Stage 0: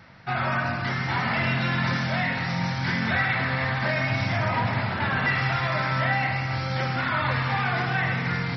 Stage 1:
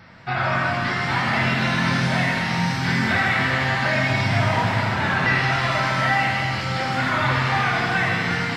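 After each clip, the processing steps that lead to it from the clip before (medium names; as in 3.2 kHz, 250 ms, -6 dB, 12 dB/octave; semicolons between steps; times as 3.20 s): pitch-shifted reverb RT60 1.5 s, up +7 st, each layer -8 dB, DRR 3 dB; trim +2.5 dB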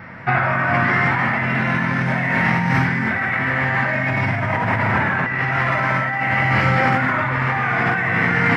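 ten-band graphic EQ 125 Hz +5 dB, 250 Hz +5 dB, 500 Hz +4 dB, 1 kHz +4 dB, 2 kHz +10 dB, 4 kHz -11 dB, 8 kHz -6 dB; compressor with a negative ratio -19 dBFS, ratio -1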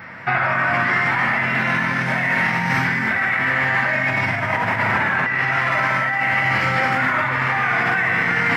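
tilt EQ +2 dB/octave; loudness maximiser +9 dB; trim -8.5 dB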